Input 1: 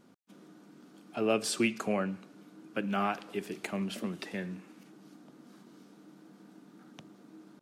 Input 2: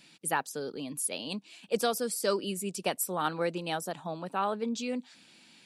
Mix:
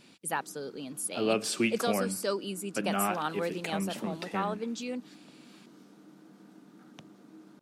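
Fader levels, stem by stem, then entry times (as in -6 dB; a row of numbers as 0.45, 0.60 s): +0.5, -2.5 dB; 0.00, 0.00 s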